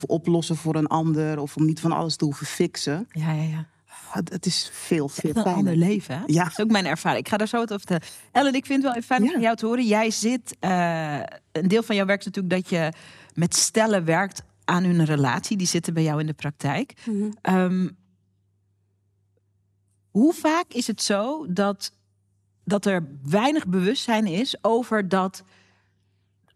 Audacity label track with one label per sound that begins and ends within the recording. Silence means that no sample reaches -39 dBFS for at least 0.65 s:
20.150000	21.880000	sound
22.670000	25.390000	sound